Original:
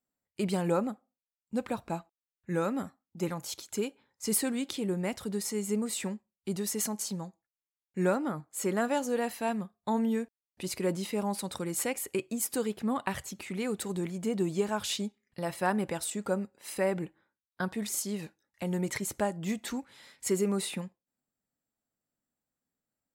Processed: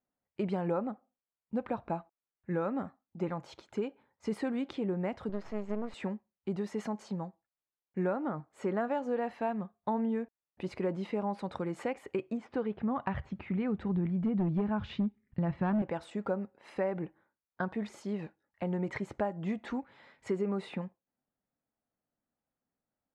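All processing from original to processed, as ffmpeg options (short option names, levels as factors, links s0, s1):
-filter_complex "[0:a]asettb=1/sr,asplit=3[s0][s1][s2];[s0]atrim=end=5.294[s3];[s1]atrim=start=5.29:end=5.94,asetpts=PTS-STARTPTS,afade=t=in:d=0.004:c=qsin,afade=t=out:st=0.646:d=0.004:c=qsin,lowpass=f=6700:w=0.5412,lowpass=f=6700:w=1.3066,aeval=exprs='max(val(0),0)':c=same[s4];[s2]atrim=start=5.936[s5];[s3][s4]acrossfade=d=0.004:c1=hsin:c2=qsin[s6];[s6][s5]acrossfade=d=0.004:c1=qsin:c2=hsin,asettb=1/sr,asplit=3[s7][s8][s9];[s7]atrim=end=12.374[s10];[s8]atrim=start=12.37:end=15.82,asetpts=PTS-STARTPTS,afade=t=in:d=0.004:c=qsin,afade=t=out:st=3.446:d=0.004:c=qsin,lowpass=3400,asubboost=boost=10:cutoff=190,asoftclip=type=hard:threshold=0.0944[s11];[s9]atrim=start=15.816[s12];[s10][s11]acrossfade=d=0.004:c1=hsin:c2=qsin[s13];[s13][s12]acrossfade=d=0.004:c1=qsin:c2=hsin,lowpass=2000,equalizer=f=730:w=1.3:g=3.5,acompressor=threshold=0.0355:ratio=3"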